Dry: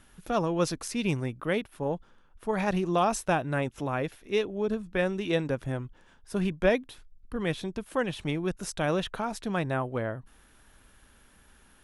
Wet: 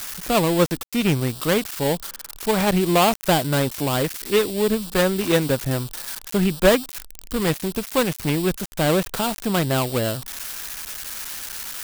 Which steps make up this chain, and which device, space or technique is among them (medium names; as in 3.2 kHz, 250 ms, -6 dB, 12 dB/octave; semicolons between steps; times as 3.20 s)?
budget class-D amplifier (dead-time distortion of 0.22 ms; zero-crossing glitches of -22 dBFS); trim +8.5 dB